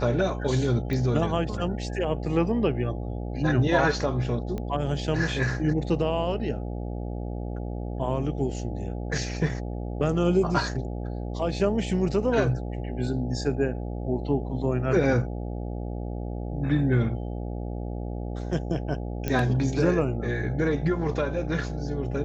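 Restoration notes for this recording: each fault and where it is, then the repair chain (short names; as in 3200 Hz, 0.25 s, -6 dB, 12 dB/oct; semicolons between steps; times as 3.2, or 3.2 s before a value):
buzz 60 Hz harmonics 14 -32 dBFS
0.93 pop -19 dBFS
4.58 pop -21 dBFS
19.28 pop -14 dBFS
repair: de-click; de-hum 60 Hz, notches 14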